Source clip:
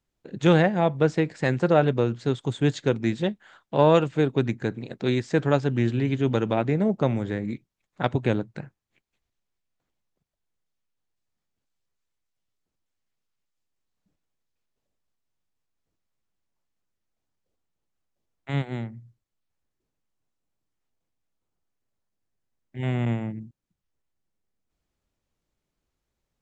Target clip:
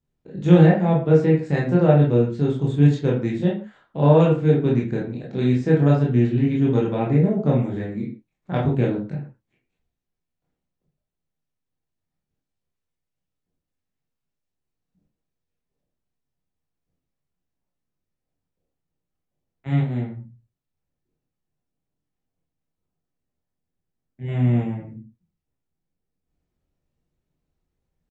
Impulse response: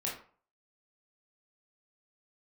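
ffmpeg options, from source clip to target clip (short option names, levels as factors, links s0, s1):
-filter_complex "[0:a]atempo=0.94,lowshelf=f=500:g=11[s0];[1:a]atrim=start_sample=2205,afade=t=out:st=0.23:d=0.01,atrim=end_sample=10584[s1];[s0][s1]afir=irnorm=-1:irlink=0,volume=0.447"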